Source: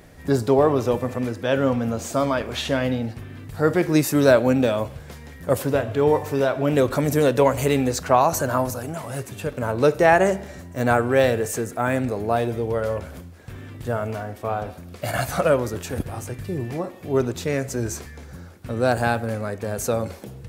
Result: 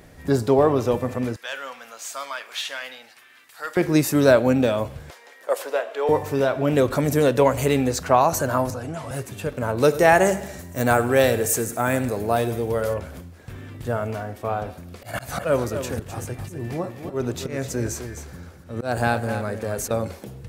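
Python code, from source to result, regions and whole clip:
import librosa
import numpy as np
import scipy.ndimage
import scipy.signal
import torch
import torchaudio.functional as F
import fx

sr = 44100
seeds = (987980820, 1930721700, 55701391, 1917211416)

y = fx.chain(x, sr, fx.highpass(hz=1400.0, slope=12),
    fx.clip_hard(threshold_db=-21.5), at=(1.36, 3.77))
y = fx.chain(y, sr, fx.highpass(hz=480.0, slope=24),
    fx.high_shelf(hz=9500.0, db=-7.5), at=(5.1, 6.09))
y = fx.chain(y, sr, fx.air_absorb(metres=58.0),
    fx.notch_comb(f0_hz=200.0),
    fx.band_squash(depth_pct=70), at=(8.7, 9.11))
y = fx.chain(y, sr, fx.high_shelf(hz=6500.0, db=12.0),
    fx.echo_feedback(ms=102, feedback_pct=46, wet_db=-16.5), at=(9.77, 12.94))
y = fx.chain(y, sr, fx.auto_swell(attack_ms=168.0),
    fx.echo_single(ms=257, db=-9.5), at=(14.98, 19.91))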